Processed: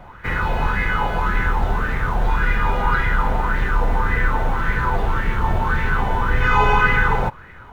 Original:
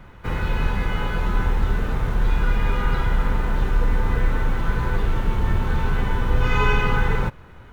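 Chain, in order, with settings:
auto-filter bell 1.8 Hz 690–2,000 Hz +15 dB

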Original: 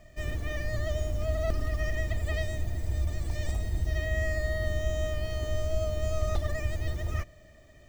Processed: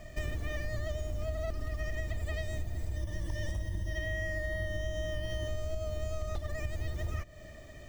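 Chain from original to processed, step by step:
0:02.96–0:05.48: EQ curve with evenly spaced ripples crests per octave 1.2, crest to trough 13 dB
downward compressor 10 to 1, threshold −37 dBFS, peak gain reduction 16 dB
level +6 dB

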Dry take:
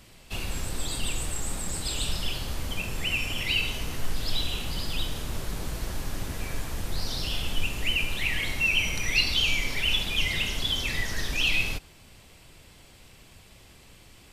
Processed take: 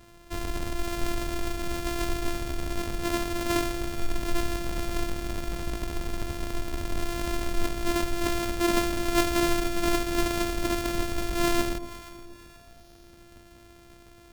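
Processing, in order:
samples sorted by size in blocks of 128 samples
delay that swaps between a low-pass and a high-pass 237 ms, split 820 Hz, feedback 60%, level −12 dB

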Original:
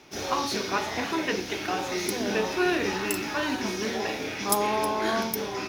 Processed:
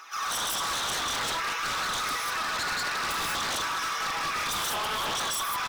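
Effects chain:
notch filter 4,500 Hz
comb filter 6.1 ms, depth 61%
downward compressor 2.5 to 1, threshold −32 dBFS, peak gain reduction 10.5 dB
phase shifter 0.56 Hz, delay 4.5 ms, feedback 60%
high-pass with resonance 1,200 Hz, resonance Q 14
on a send: backwards echo 135 ms −17.5 dB
on the sum: reverb whose tail is shaped and stops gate 220 ms rising, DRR −4 dB
wave folding −22 dBFS
level −3 dB

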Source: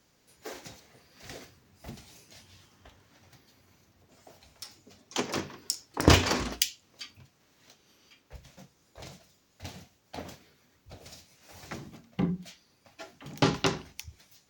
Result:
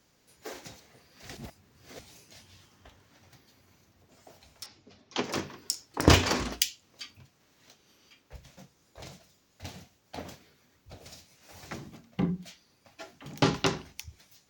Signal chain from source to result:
0:01.35–0:01.99: reverse
0:04.66–0:05.24: low-pass filter 5,300 Hz 24 dB per octave

